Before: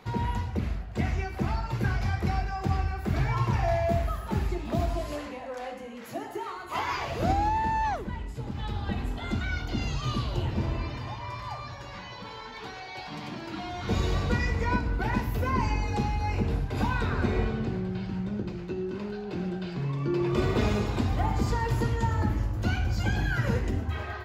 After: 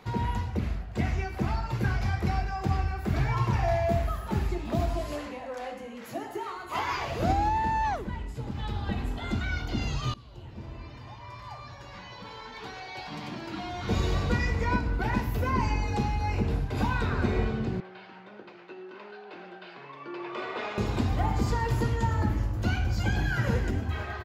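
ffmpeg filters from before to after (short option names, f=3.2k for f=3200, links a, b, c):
-filter_complex "[0:a]asettb=1/sr,asplit=3[a][b][c];[a]atrim=end=17.804[d];[b]atrim=start=17.8:end=20.78,asetpts=PTS-STARTPTS,afade=t=in:d=0.004:c=qsin,afade=t=out:st=2.976:d=0.004:c=qsin,highpass=660,lowpass=3.1k[e];[c]atrim=start=20.776[f];[d][e]acrossfade=d=0.004:c1=hsin:c2=qsin[g];[g][f]acrossfade=d=0.004:c1=qsin:c2=hsin,asplit=2[h][i];[i]afade=t=in:st=22.82:d=0.01,afade=t=out:st=23.36:d=0.01,aecho=0:1:340|680|1020|1360|1700|2040:0.266073|0.14634|0.0804869|0.0442678|0.0243473|0.013391[j];[h][j]amix=inputs=2:normalize=0,asplit=2[k][l];[k]atrim=end=10.14,asetpts=PTS-STARTPTS,afade=t=out:st=10.136:d=0.004:c=hsin:silence=0.0749894[m];[l]atrim=start=10.14,asetpts=PTS-STARTPTS,afade=t=in:d=2.72:silence=0.0749894[n];[m][n]concat=n=2:v=0:a=1"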